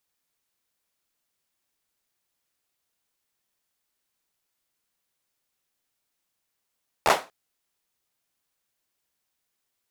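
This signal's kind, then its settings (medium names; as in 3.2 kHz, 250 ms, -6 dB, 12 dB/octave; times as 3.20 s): hand clap length 0.24 s, bursts 4, apart 13 ms, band 750 Hz, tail 0.27 s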